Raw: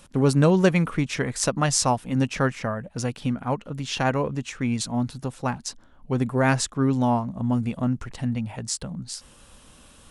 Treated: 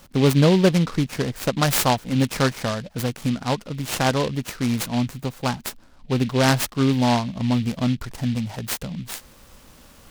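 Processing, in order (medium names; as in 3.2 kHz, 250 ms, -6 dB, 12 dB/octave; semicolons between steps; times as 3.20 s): 0.41–1.52 s: treble shelf 2 kHz -10.5 dB; delay time shaken by noise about 2.9 kHz, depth 0.076 ms; trim +2.5 dB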